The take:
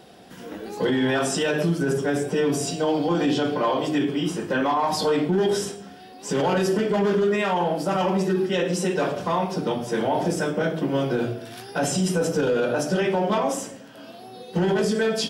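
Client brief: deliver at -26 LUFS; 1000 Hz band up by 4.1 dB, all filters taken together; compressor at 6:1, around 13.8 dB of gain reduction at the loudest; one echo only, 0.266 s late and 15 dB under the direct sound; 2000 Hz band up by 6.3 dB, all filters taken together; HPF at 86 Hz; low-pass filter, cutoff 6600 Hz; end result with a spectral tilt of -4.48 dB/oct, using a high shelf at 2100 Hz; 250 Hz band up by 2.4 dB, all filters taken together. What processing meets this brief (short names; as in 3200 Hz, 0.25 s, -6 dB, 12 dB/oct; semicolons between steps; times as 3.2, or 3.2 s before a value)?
HPF 86 Hz; LPF 6600 Hz; bell 250 Hz +3 dB; bell 1000 Hz +3 dB; bell 2000 Hz +4.5 dB; high shelf 2100 Hz +5 dB; compressor 6:1, threshold -31 dBFS; echo 0.266 s -15 dB; gain +7.5 dB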